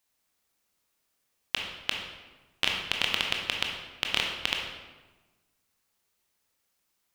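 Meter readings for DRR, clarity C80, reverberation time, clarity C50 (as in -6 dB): 0.0 dB, 5.5 dB, 1.2 s, 3.0 dB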